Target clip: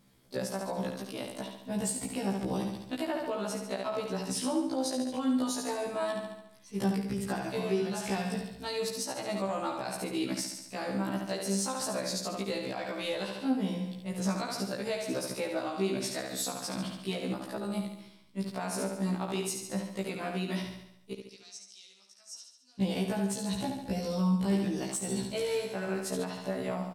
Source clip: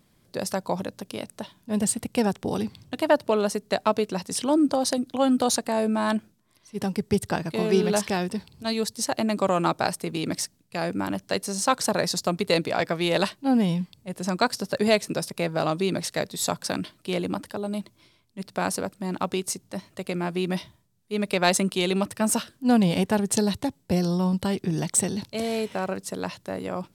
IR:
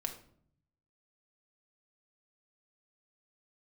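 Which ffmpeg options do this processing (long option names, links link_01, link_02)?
-filter_complex "[0:a]acompressor=threshold=-22dB:ratio=6,asettb=1/sr,asplit=3[link_01][link_02][link_03];[link_01]atrim=end=21.134[link_04];[link_02]atrim=start=21.13:end=22.81,asetpts=PTS-STARTPTS,afade=type=in:duration=0.004:curve=qsin,afade=type=out:start_time=1.676:duration=0.004:curve=qsin,bandpass=frequency=5600:width_type=q:width=10:csg=0[link_05];[link_03]atrim=start=22.806[link_06];[link_04][link_05]acrossfade=duration=0.004:curve1=hsin:curve2=qsin[link_07];[link_07][link_06]acrossfade=duration=0.004:curve1=qsin:curve2=hsin,aecho=1:1:71|142|213|284|355|426|497:0.501|0.266|0.141|0.0746|0.0395|0.021|0.0111,alimiter=limit=-20dB:level=0:latency=1:release=223,afftfilt=real='re*1.73*eq(mod(b,3),0)':imag='im*1.73*eq(mod(b,3),0)':win_size=2048:overlap=0.75"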